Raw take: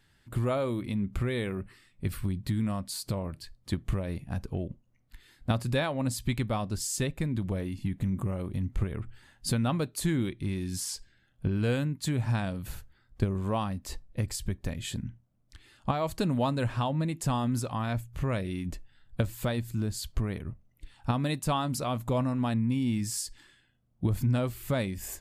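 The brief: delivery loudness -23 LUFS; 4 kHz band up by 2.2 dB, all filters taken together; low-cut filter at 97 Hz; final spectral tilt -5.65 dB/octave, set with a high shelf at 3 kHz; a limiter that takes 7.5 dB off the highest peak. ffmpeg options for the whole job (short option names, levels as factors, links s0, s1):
-af "highpass=97,highshelf=f=3000:g=-5,equalizer=f=4000:t=o:g=6.5,volume=3.35,alimiter=limit=0.251:level=0:latency=1"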